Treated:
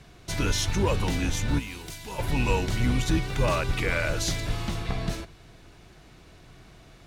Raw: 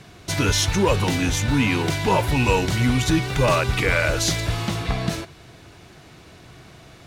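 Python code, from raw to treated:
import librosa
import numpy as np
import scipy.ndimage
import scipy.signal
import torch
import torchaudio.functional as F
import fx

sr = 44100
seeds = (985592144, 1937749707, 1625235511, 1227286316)

y = fx.octave_divider(x, sr, octaves=2, level_db=1.0)
y = fx.pre_emphasis(y, sr, coefficient=0.8, at=(1.58, 2.18), fade=0.02)
y = y * librosa.db_to_amplitude(-7.0)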